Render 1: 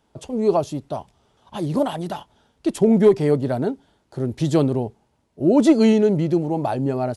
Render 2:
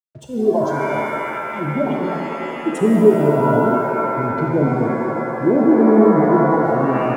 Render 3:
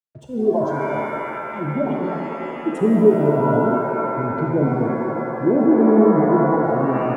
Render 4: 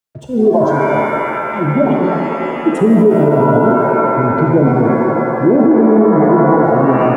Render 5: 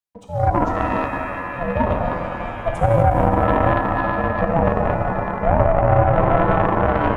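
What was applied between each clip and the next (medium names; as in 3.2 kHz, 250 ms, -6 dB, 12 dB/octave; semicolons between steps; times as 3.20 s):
spectral gate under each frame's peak -10 dB strong; crossover distortion -51.5 dBFS; pitch-shifted reverb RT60 2.7 s, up +7 st, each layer -2 dB, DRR 0.5 dB
treble shelf 2.5 kHz -10 dB; trim -1.5 dB
loudness maximiser +10.5 dB; trim -1 dB
ring modulator 340 Hz; Chebyshev shaper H 3 -17 dB, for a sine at -2 dBFS; trim -1 dB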